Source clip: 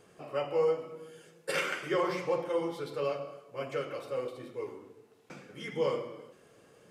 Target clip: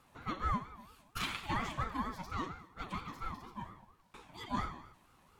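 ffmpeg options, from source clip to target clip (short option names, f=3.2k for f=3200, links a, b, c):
-af "asetrate=56448,aresample=44100,aeval=exprs='val(0)*sin(2*PI*530*n/s+530*0.3/4.3*sin(2*PI*4.3*n/s))':c=same,volume=-3dB"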